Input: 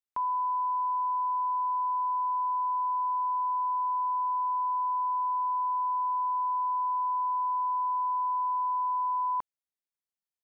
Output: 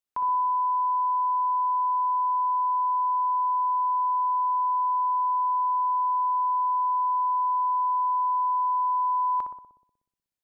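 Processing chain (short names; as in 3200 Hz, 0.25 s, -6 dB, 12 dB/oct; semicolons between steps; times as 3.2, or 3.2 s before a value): 0.66–2.67 crackle 12/s -58 dBFS; darkening echo 61 ms, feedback 72%, low-pass 1000 Hz, level -4 dB; gain +2 dB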